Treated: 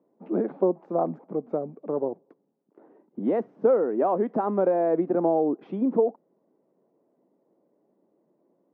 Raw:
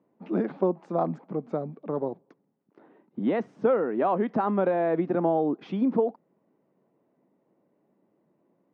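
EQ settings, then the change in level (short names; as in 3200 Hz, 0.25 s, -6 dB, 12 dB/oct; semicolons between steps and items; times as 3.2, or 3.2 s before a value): band-pass 460 Hz, Q 0.86; +3.0 dB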